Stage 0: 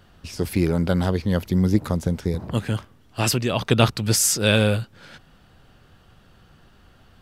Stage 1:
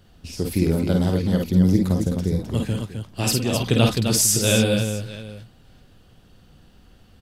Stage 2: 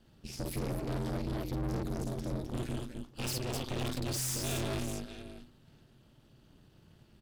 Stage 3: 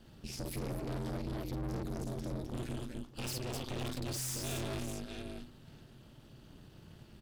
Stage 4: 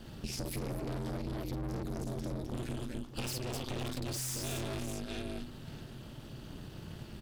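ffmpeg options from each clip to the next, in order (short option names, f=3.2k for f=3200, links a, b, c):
-af "equalizer=f=1.3k:w=0.71:g=-8,aecho=1:1:50|54|260|641:0.531|0.447|0.473|0.141"
-af "bandreject=f=60:t=h:w=6,bandreject=f=120:t=h:w=6,bandreject=f=180:t=h:w=6,aeval=exprs='(tanh(28.2*val(0)+0.75)-tanh(0.75))/28.2':c=same,aeval=exprs='val(0)*sin(2*PI*130*n/s)':c=same,volume=-2dB"
-af "alimiter=level_in=12dB:limit=-24dB:level=0:latency=1:release=323,volume=-12dB,volume=5.5dB"
-af "acompressor=threshold=-44dB:ratio=4,volume=9dB"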